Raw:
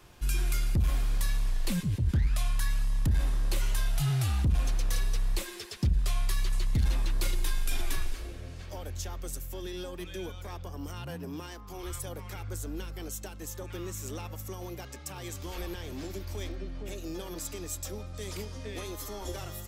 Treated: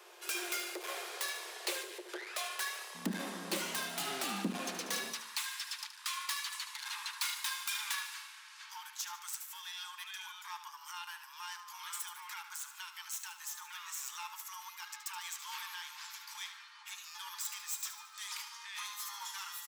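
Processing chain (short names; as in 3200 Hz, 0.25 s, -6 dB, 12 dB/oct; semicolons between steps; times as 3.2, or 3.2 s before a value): self-modulated delay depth 0.063 ms; Chebyshev high-pass 350 Hz, order 8, from 2.94 s 180 Hz, from 5.12 s 870 Hz; feedback echo 74 ms, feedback 48%, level -11 dB; gain +2.5 dB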